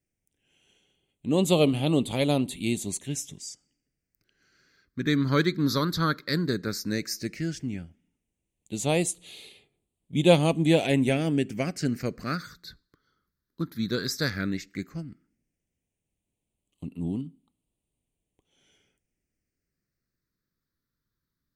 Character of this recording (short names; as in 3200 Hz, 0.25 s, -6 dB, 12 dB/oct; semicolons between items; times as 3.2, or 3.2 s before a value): phasing stages 6, 0.13 Hz, lowest notch 730–1500 Hz